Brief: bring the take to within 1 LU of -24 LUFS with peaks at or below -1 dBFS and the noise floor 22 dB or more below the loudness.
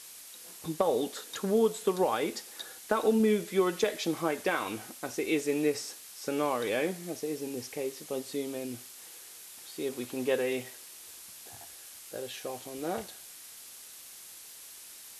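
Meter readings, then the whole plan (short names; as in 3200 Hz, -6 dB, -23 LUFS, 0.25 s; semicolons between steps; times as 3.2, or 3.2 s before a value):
noise floor -49 dBFS; noise floor target -54 dBFS; loudness -31.5 LUFS; peak -13.0 dBFS; loudness target -24.0 LUFS
-> noise print and reduce 6 dB; gain +7.5 dB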